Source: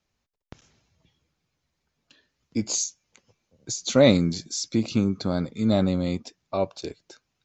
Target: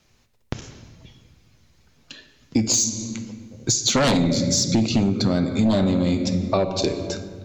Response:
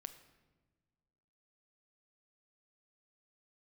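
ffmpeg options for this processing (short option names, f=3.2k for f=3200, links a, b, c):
-filter_complex "[0:a]equalizer=f=890:t=o:w=1.9:g=-3[a];[1:a]atrim=start_sample=2205,asetrate=35280,aresample=44100[b];[a][b]afir=irnorm=-1:irlink=0,aeval=exprs='0.422*sin(PI/2*3.98*val(0)/0.422)':c=same,acompressor=threshold=-23dB:ratio=5,volume=5dB"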